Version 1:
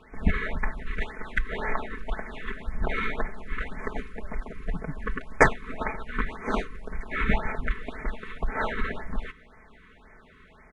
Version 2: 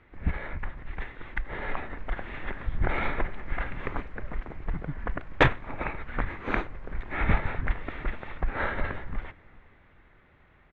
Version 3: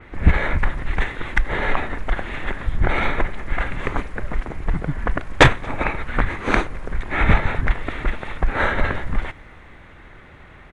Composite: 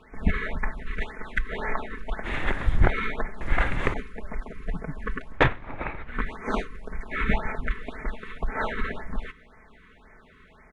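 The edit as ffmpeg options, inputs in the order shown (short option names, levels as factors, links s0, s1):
-filter_complex "[2:a]asplit=2[s0][s1];[0:a]asplit=4[s2][s3][s4][s5];[s2]atrim=end=2.27[s6];[s0]atrim=start=2.23:end=2.91[s7];[s3]atrim=start=2.87:end=3.412[s8];[s1]atrim=start=3.408:end=3.942[s9];[s4]atrim=start=3.938:end=5.46[s10];[1:a]atrim=start=5.22:end=6.26[s11];[s5]atrim=start=6.02[s12];[s6][s7]acrossfade=d=0.04:c1=tri:c2=tri[s13];[s13][s8]acrossfade=d=0.04:c1=tri:c2=tri[s14];[s14][s9]acrossfade=d=0.004:c1=hsin:c2=hsin[s15];[s15][s10]acrossfade=d=0.004:c1=hsin:c2=hsin[s16];[s16][s11]acrossfade=d=0.24:c1=tri:c2=tri[s17];[s17][s12]acrossfade=d=0.24:c1=tri:c2=tri"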